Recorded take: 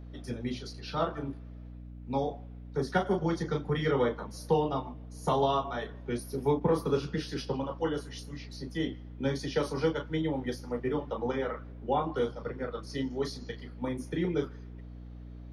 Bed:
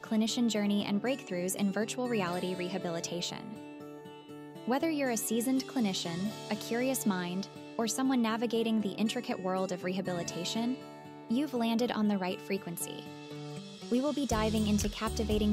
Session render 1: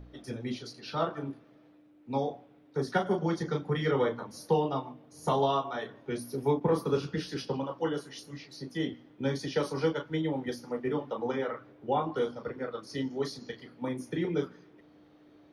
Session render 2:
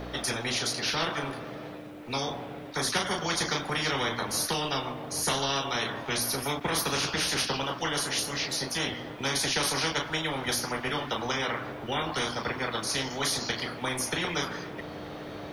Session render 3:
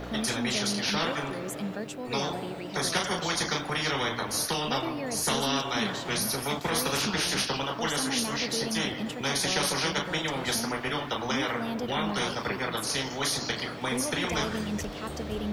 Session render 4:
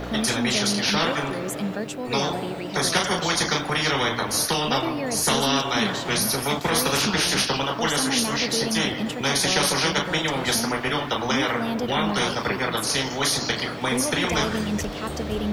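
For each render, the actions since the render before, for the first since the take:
de-hum 60 Hz, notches 4
spectrum-flattening compressor 4:1
add bed -4 dB
trim +6 dB

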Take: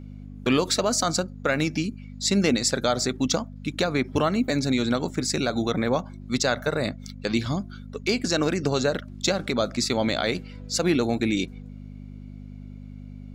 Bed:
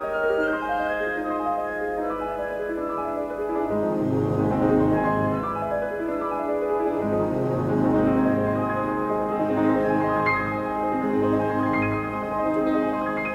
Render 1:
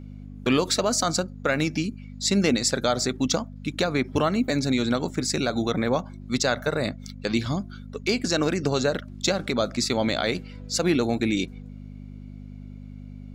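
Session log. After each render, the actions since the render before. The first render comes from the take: no audible change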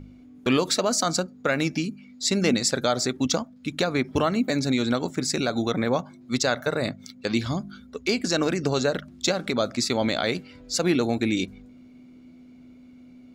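de-hum 50 Hz, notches 4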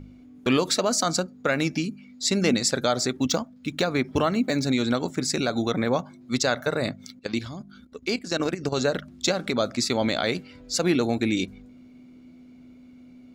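3.19–4.63 s: median filter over 3 samples; 7.19–8.78 s: level held to a coarse grid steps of 12 dB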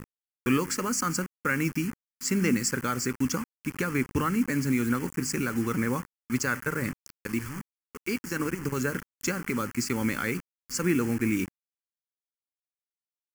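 bit crusher 6-bit; static phaser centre 1.6 kHz, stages 4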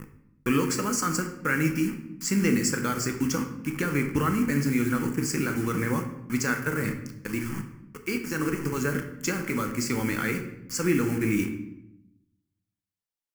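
simulated room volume 260 m³, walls mixed, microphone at 0.64 m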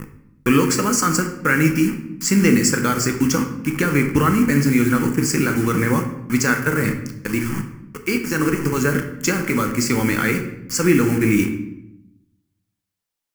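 trim +8.5 dB; peak limiter -3 dBFS, peak gain reduction 0.5 dB

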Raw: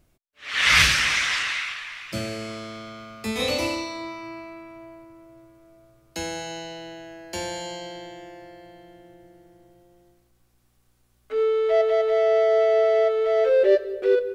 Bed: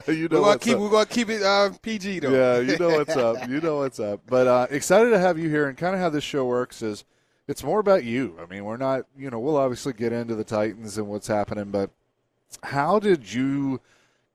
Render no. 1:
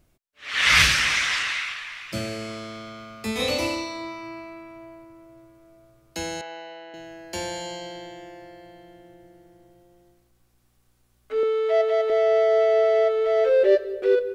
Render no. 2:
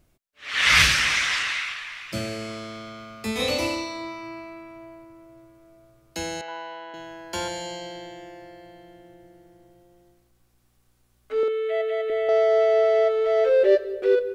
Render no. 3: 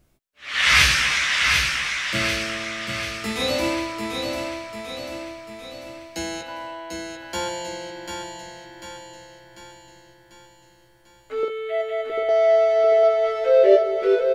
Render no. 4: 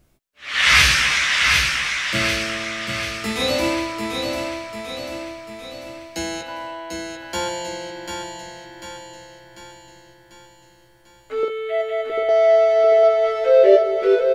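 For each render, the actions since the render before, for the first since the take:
6.41–6.94 s: band-pass 510–2300 Hz; 11.43–12.10 s: high-pass 350 Hz
6.48–7.48 s: small resonant body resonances 1/1.4/3.3 kHz, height 15 dB; 11.48–12.29 s: static phaser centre 2.3 kHz, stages 4
doubling 15 ms -5 dB; feedback delay 744 ms, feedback 53%, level -5 dB
trim +2.5 dB; peak limiter -2 dBFS, peak gain reduction 1.5 dB

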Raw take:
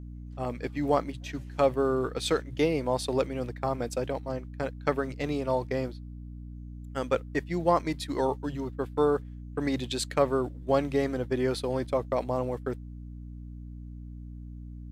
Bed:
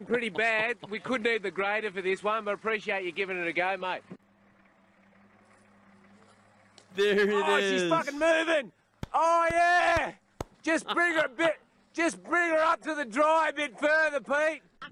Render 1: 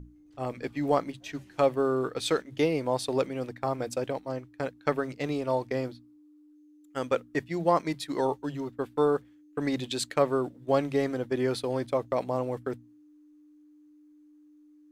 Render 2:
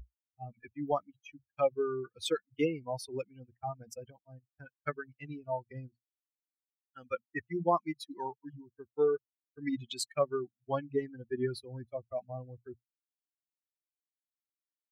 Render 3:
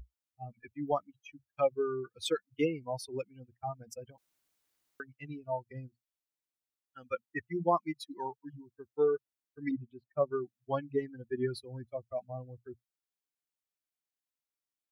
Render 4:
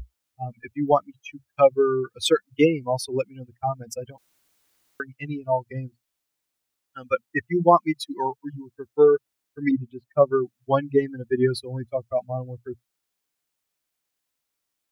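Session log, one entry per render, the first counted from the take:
hum notches 60/120/180/240 Hz
expander on every frequency bin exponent 3
4.18–5.00 s: room tone; 9.71–10.31 s: low-pass 1.1 kHz 24 dB/octave
trim +12 dB

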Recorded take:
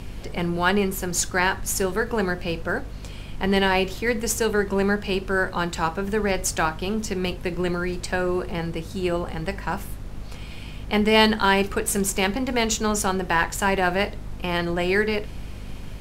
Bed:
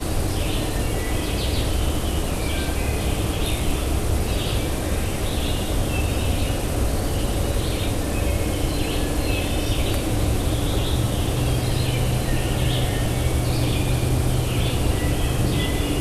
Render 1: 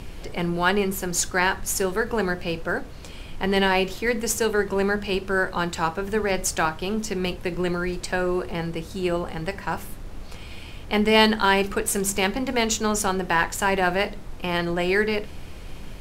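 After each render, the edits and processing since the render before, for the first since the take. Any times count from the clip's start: hum notches 50/100/150/200/250 Hz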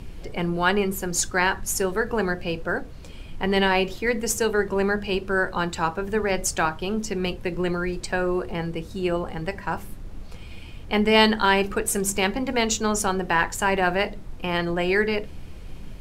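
noise reduction 6 dB, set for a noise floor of -38 dBFS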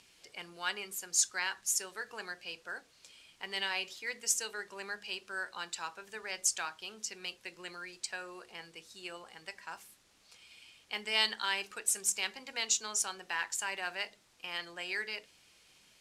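low-pass 7.2 kHz 12 dB/octave; differentiator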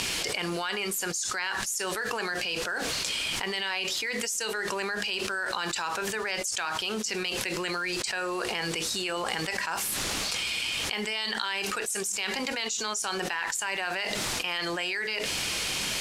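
peak limiter -23 dBFS, peak gain reduction 9 dB; level flattener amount 100%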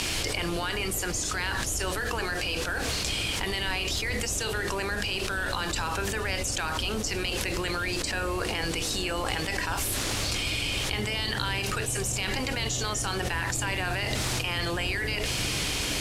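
add bed -13 dB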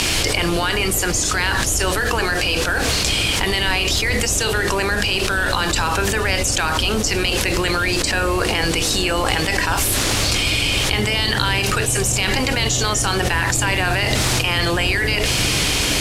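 trim +10.5 dB; peak limiter -1 dBFS, peak gain reduction 1 dB

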